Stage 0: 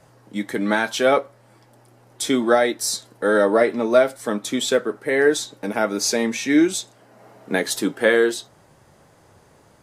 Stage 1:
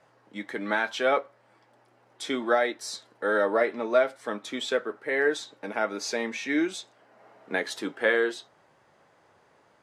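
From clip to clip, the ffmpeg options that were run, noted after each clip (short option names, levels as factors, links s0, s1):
-af "lowpass=2300,aemphasis=mode=production:type=riaa,volume=0.562"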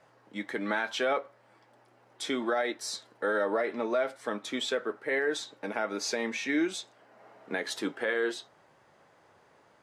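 -af "alimiter=limit=0.106:level=0:latency=1:release=82"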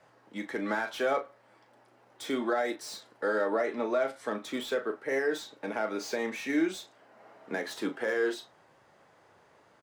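-filter_complex "[0:a]acrossover=split=400|1600[s0][s1][s2];[s2]asoftclip=type=tanh:threshold=0.0106[s3];[s0][s1][s3]amix=inputs=3:normalize=0,asplit=2[s4][s5];[s5]adelay=37,volume=0.299[s6];[s4][s6]amix=inputs=2:normalize=0"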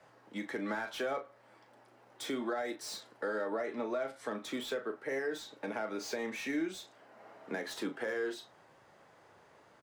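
-filter_complex "[0:a]acrossover=split=150[s0][s1];[s1]acompressor=threshold=0.0126:ratio=2[s2];[s0][s2]amix=inputs=2:normalize=0"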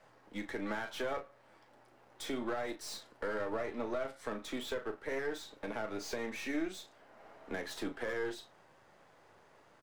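-af "aeval=exprs='if(lt(val(0),0),0.447*val(0),val(0))':c=same,volume=1.12"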